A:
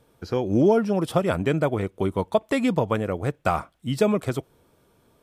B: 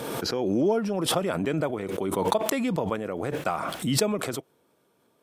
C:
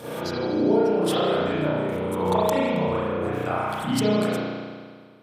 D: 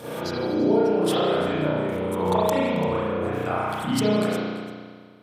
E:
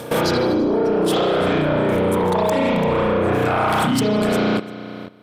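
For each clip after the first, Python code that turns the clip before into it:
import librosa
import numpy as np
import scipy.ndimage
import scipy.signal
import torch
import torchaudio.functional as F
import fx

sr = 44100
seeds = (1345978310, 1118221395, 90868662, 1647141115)

y1 = scipy.signal.sosfilt(scipy.signal.butter(2, 190.0, 'highpass', fs=sr, output='sos'), x)
y1 = fx.pre_swell(y1, sr, db_per_s=23.0)
y1 = y1 * librosa.db_to_amplitude(-5.0)
y2 = fx.rev_spring(y1, sr, rt60_s=1.8, pass_ms=(33,), chirp_ms=50, drr_db=-9.5)
y2 = y2 * librosa.db_to_amplitude(-6.5)
y3 = y2 + 10.0 ** (-17.5 / 20.0) * np.pad(y2, (int(340 * sr / 1000.0), 0))[:len(y2)]
y4 = fx.level_steps(y3, sr, step_db=16)
y4 = fx.fold_sine(y4, sr, drive_db=8, ceiling_db=-17.0)
y4 = y4 * librosa.db_to_amplitude(4.0)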